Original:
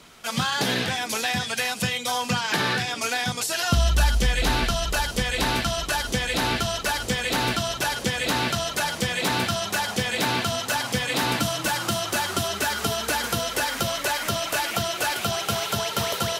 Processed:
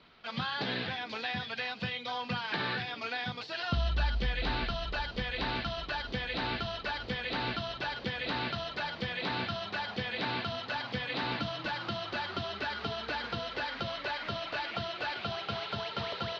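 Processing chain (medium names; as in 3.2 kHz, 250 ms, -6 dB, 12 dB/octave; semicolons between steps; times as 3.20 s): elliptic low-pass 4.4 kHz, stop band 60 dB; trim -9 dB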